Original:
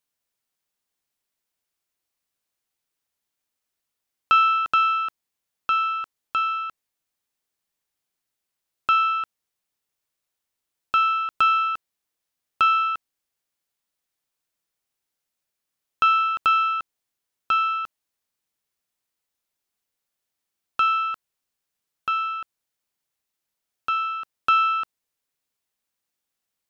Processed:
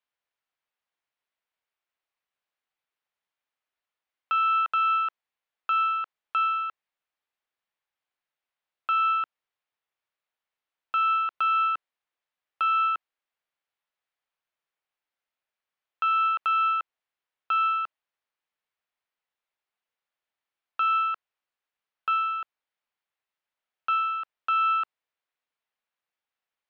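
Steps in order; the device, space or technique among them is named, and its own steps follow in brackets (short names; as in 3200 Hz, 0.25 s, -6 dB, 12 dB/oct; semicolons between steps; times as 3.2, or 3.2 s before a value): DJ mixer with the lows and highs turned down (three-band isolator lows -12 dB, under 500 Hz, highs -20 dB, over 3500 Hz; limiter -17.5 dBFS, peak gain reduction 9 dB)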